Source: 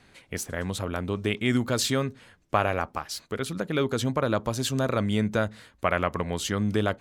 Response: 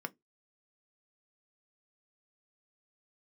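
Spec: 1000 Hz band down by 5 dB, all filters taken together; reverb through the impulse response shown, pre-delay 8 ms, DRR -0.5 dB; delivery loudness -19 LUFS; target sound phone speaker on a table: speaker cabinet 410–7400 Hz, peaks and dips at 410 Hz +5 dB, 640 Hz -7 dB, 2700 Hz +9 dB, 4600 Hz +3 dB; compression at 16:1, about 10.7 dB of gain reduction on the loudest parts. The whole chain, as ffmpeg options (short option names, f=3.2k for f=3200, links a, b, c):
-filter_complex "[0:a]equalizer=f=1k:t=o:g=-6,acompressor=threshold=-31dB:ratio=16,asplit=2[a][b];[1:a]atrim=start_sample=2205,adelay=8[c];[b][c]afir=irnorm=-1:irlink=0,volume=0dB[d];[a][d]amix=inputs=2:normalize=0,highpass=f=410:w=0.5412,highpass=f=410:w=1.3066,equalizer=f=410:t=q:w=4:g=5,equalizer=f=640:t=q:w=4:g=-7,equalizer=f=2.7k:t=q:w=4:g=9,equalizer=f=4.6k:t=q:w=4:g=3,lowpass=f=7.4k:w=0.5412,lowpass=f=7.4k:w=1.3066,volume=16.5dB"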